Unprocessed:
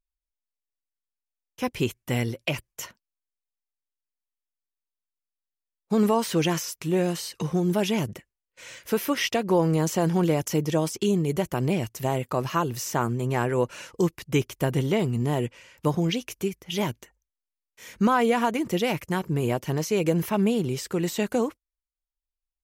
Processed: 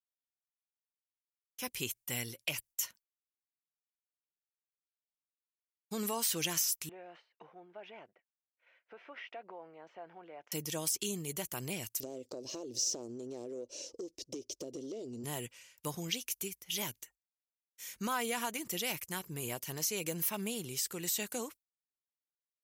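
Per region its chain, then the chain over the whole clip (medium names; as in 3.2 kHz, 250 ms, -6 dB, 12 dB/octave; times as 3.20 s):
6.89–10.52 s: compression 10:1, threshold -25 dBFS + cabinet simulation 500–2000 Hz, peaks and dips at 700 Hz +7 dB, 1.1 kHz -4 dB, 1.8 kHz -4 dB
12.00–15.24 s: self-modulated delay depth 0.056 ms + FFT filter 110 Hz 0 dB, 170 Hz -9 dB, 260 Hz +15 dB, 570 Hz +15 dB, 830 Hz -3 dB, 1.4 kHz -20 dB, 2.2 kHz -12 dB, 5.6 kHz +6 dB, 12 kHz -22 dB + compression, threshold -24 dBFS
whole clip: pre-emphasis filter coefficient 0.9; expander -55 dBFS; trim +2.5 dB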